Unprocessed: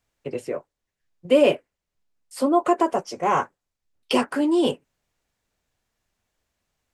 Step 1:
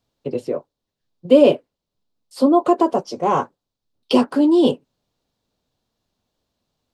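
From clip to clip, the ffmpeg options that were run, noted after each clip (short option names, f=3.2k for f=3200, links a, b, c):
-af "equalizer=f=125:t=o:w=1:g=6,equalizer=f=250:t=o:w=1:g=8,equalizer=f=500:t=o:w=1:g=5,equalizer=f=1k:t=o:w=1:g=4,equalizer=f=2k:t=o:w=1:g=-8,equalizer=f=4k:t=o:w=1:g=10,equalizer=f=8k:t=o:w=1:g=-4,volume=-2dB"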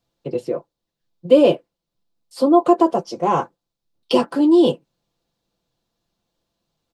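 -af "aecho=1:1:5.9:0.45,volume=-1dB"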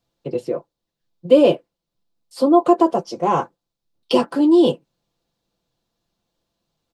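-af anull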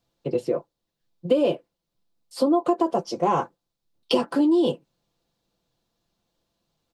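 -af "acompressor=threshold=-17dB:ratio=6"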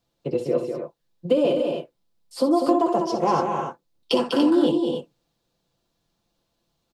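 -af "aecho=1:1:61.22|198.3|256.6|288.6:0.316|0.501|0.282|0.398"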